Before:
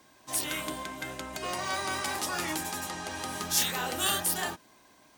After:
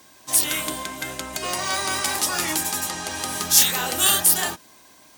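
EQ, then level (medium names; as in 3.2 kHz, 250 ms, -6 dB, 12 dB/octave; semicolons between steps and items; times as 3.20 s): treble shelf 3.8 kHz +8.5 dB; +5.0 dB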